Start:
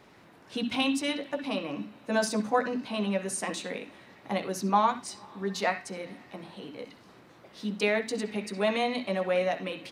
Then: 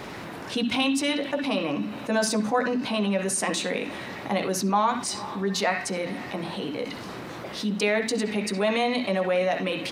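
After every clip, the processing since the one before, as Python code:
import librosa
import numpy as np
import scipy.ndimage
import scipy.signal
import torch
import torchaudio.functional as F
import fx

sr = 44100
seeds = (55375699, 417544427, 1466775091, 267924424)

y = fx.env_flatten(x, sr, amount_pct=50)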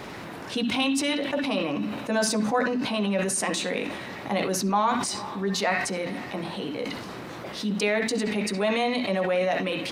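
y = fx.sustainer(x, sr, db_per_s=41.0)
y = y * 10.0 ** (-1.0 / 20.0)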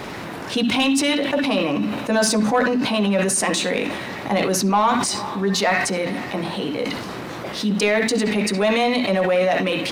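y = fx.leveller(x, sr, passes=1)
y = y * 10.0 ** (3.0 / 20.0)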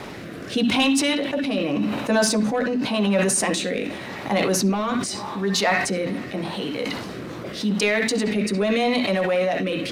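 y = fx.rotary(x, sr, hz=0.85)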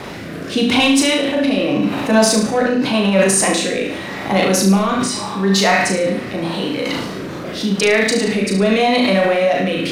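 y = fx.room_flutter(x, sr, wall_m=6.2, rt60_s=0.52)
y = y * 10.0 ** (4.5 / 20.0)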